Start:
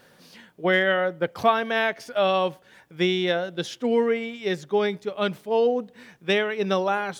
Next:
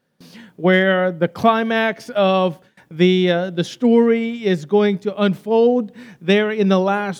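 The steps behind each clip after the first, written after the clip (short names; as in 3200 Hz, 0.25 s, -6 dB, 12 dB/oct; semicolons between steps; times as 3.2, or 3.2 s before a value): bell 190 Hz +9.5 dB 1.8 oct; gate with hold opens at -40 dBFS; gain +3.5 dB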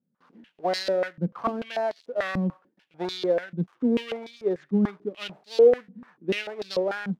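switching dead time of 0.17 ms; stepped band-pass 6.8 Hz 200–4300 Hz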